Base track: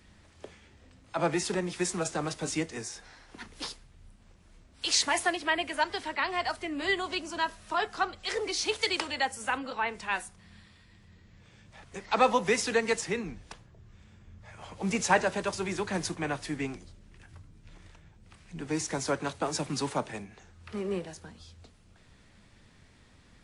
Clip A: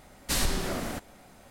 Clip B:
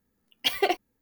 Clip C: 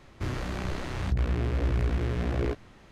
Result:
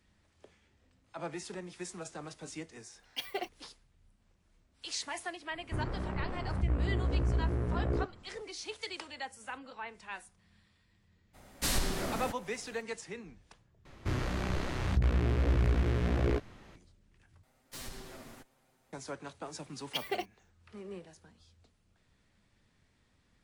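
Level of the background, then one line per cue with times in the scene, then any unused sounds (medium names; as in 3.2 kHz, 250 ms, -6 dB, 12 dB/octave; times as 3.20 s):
base track -12 dB
2.72 s: add B -13 dB
5.51 s: add C -3.5 dB + low-pass 1.3 kHz
11.33 s: add A -3.5 dB, fades 0.02 s
13.85 s: replace with C -1 dB
17.43 s: replace with A -15.5 dB + comb filter that takes the minimum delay 7.7 ms
19.49 s: add B -11 dB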